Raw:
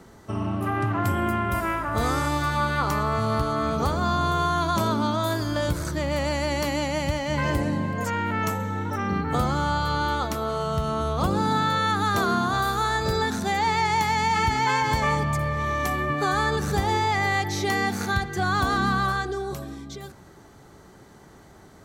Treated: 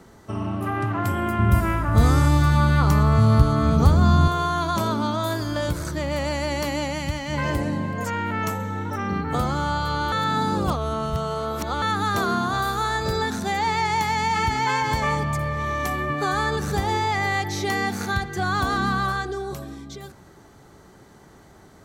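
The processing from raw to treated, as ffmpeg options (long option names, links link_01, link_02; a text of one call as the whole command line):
ffmpeg -i in.wav -filter_complex "[0:a]asettb=1/sr,asplit=3[link_01][link_02][link_03];[link_01]atrim=end=1.394[link_04];[link_02]atrim=start=1.39:end=4.28,asetpts=PTS-STARTPTS,afade=type=in:duration=0.004:curve=qsin,afade=type=out:start_time=2.886:duration=0.004:curve=qsin,bass=frequency=250:gain=13,treble=frequency=4000:gain=2[link_05];[link_03]atrim=start=4.276[link_06];[link_04][link_05]acrossfade=duration=0.004:curve1=hsin:curve2=qsin[link_07];[link_07][link_06]acrossfade=duration=0.004:curve1=qsin:curve2=hsin,asettb=1/sr,asplit=3[link_08][link_09][link_10];[link_08]atrim=end=6.934[link_11];[link_09]atrim=start=6.93:end=7.33,asetpts=PTS-STARTPTS,afade=type=in:duration=0.004:curve=qsin,afade=type=out:start_time=0.396:duration=0.004:curve=qsin,equalizer=frequency=570:width_type=o:width=1.1:gain=-6[link_12];[link_10]atrim=start=7.326[link_13];[link_11][link_12]acrossfade=duration=0.004:curve1=hsin:curve2=qsin[link_14];[link_14][link_13]acrossfade=duration=0.004:curve1=qsin:curve2=hsin,asplit=3[link_15][link_16][link_17];[link_15]atrim=end=10.122[link_18];[link_16]atrim=start=10.118:end=11.822,asetpts=PTS-STARTPTS,areverse[link_19];[link_17]atrim=start=11.818[link_20];[link_18][link_19]acrossfade=duration=0.004:curve1=hsin:curve2=hsin[link_21];[link_21][link_20]acrossfade=duration=0.004:curve1=hsin:curve2=hsin" out.wav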